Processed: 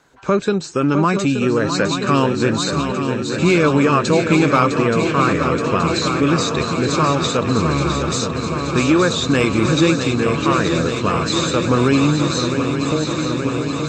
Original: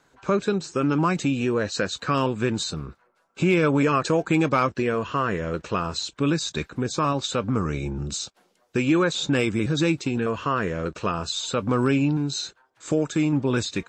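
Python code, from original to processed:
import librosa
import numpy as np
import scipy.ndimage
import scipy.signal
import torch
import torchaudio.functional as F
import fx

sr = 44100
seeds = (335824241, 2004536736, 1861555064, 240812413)

y = fx.fade_out_tail(x, sr, length_s=1.77)
y = fx.cheby_harmonics(y, sr, harmonics=(6,), levels_db=(-43,), full_scale_db=-10.5)
y = fx.echo_swing(y, sr, ms=875, ratio=3, feedback_pct=77, wet_db=-8.0)
y = F.gain(torch.from_numpy(y), 5.5).numpy()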